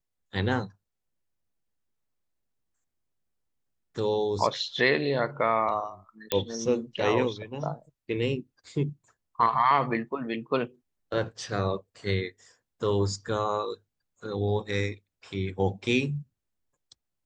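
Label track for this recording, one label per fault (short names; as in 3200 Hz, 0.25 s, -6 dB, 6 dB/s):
6.320000	6.320000	pop -9 dBFS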